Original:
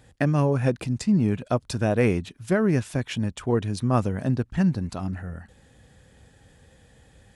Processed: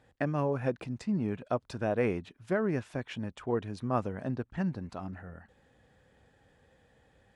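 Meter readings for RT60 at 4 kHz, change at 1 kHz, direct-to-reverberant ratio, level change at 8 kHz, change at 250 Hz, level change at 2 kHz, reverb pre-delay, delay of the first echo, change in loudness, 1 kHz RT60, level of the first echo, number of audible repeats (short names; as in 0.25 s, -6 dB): none, -5.0 dB, none, under -15 dB, -9.5 dB, -7.0 dB, none, none, -8.5 dB, none, none, none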